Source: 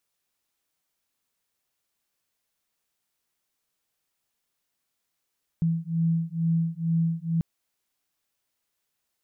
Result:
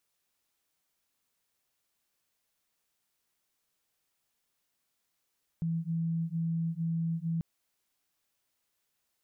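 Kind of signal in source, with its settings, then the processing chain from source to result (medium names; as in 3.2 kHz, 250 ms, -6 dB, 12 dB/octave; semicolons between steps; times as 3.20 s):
beating tones 164 Hz, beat 2.2 Hz, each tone -25.5 dBFS 1.79 s
peak limiter -28 dBFS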